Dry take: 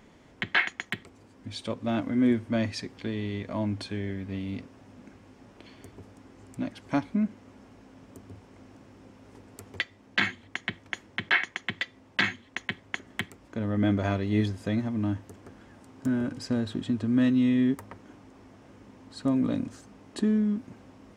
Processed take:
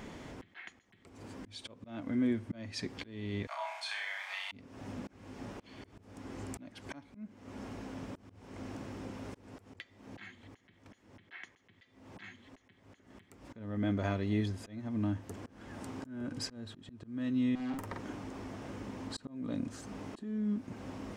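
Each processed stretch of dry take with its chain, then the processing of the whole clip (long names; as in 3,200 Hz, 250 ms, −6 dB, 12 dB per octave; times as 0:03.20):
0:03.47–0:04.52: Butterworth high-pass 740 Hz 48 dB per octave + volume swells 101 ms + flutter between parallel walls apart 5.5 metres, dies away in 0.53 s
0:17.55–0:18.00: tube saturation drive 36 dB, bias 0.45 + double-tracking delay 47 ms −4 dB
whole clip: downward compressor 2.5 to 1, threshold −45 dBFS; volume swells 368 ms; level +8.5 dB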